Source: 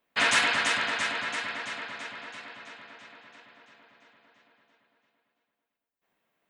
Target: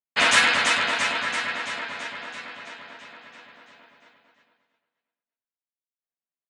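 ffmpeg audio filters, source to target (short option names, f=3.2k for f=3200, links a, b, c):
-filter_complex "[0:a]agate=range=-33dB:threshold=-56dB:ratio=3:detection=peak,asplit=2[a][b];[b]adelay=12,volume=-2.5dB[c];[a][c]amix=inputs=2:normalize=0,aecho=1:1:581:0.075,volume=3.5dB"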